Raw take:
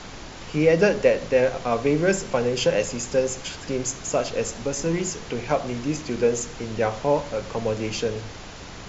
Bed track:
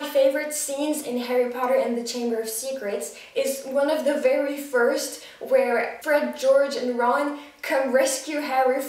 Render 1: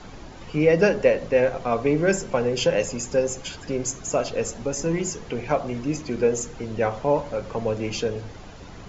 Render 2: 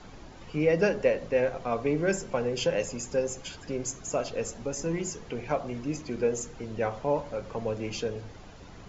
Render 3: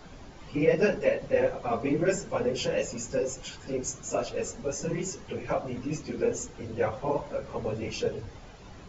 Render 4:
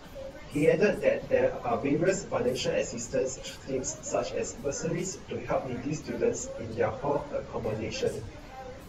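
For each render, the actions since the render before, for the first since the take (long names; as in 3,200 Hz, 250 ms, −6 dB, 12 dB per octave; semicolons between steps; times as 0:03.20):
broadband denoise 9 dB, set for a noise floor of −39 dBFS
level −6 dB
random phases in long frames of 50 ms
mix in bed track −23.5 dB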